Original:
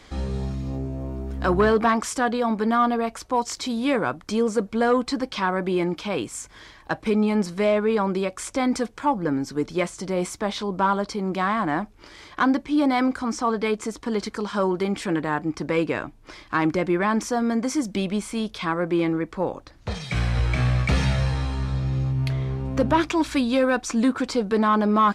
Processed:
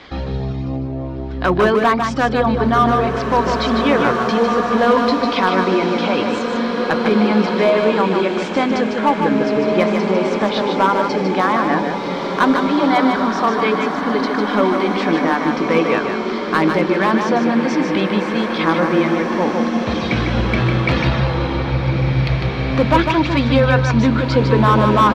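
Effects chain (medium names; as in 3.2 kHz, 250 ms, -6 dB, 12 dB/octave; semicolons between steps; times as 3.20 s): high-pass 110 Hz 6 dB/octave; reverb removal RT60 0.95 s; low-pass 4.4 kHz 24 dB/octave; hum notches 50/100/150/200/250/300/350/400/450 Hz; in parallel at -1.5 dB: compression 4:1, threshold -33 dBFS, peak gain reduction 15 dB; on the sum: overload inside the chain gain 13.5 dB; on a send: delay 151 ms -5.5 dB; on the sum: swelling reverb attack 2410 ms, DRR 2.5 dB; trim +5 dB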